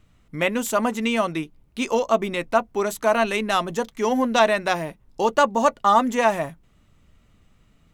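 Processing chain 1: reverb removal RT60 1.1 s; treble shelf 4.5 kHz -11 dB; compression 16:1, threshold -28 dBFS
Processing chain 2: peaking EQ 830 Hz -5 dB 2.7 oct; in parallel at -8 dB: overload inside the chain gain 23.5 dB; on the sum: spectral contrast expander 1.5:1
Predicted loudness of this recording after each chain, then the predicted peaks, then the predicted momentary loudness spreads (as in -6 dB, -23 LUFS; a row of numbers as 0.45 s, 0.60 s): -34.0 LUFS, -24.0 LUFS; -17.5 dBFS, -8.0 dBFS; 6 LU, 12 LU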